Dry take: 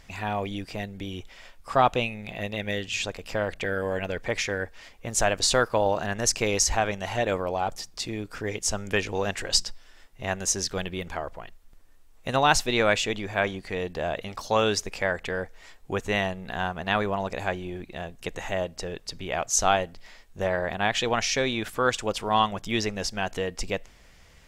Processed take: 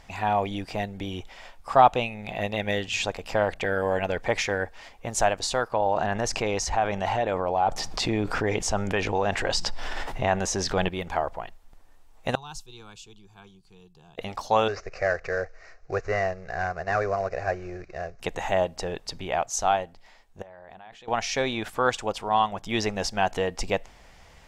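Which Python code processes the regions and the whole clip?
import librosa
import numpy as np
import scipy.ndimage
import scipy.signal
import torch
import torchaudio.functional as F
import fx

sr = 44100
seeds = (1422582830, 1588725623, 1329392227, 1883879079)

y = fx.chain(x, sr, fx.lowpass(hz=3500.0, slope=6),
    fx.env_flatten(amount_pct=70), at=(5.72, 10.89))
y = fx.chain(y, sr, fx.tone_stack(knobs='6-0-2'),
    fx.fixed_phaser(hz=390.0, stages=8), at=(12.35, 14.18))
y = fx.chain(y, sr, fx.cvsd(bps=32000),
    fx.fixed_phaser(hz=900.0, stages=6), at=(14.68, 18.2))
y = fx.chain(y, sr, fx.hum_notches(base_hz=50, count=9),
    fx.level_steps(step_db=22), at=(20.42, 21.08))
y = fx.peak_eq(y, sr, hz=810.0, db=8.0, octaves=0.78)
y = fx.rider(y, sr, range_db=4, speed_s=0.5)
y = fx.high_shelf(y, sr, hz=11000.0, db=-6.0)
y = y * 10.0 ** (-2.5 / 20.0)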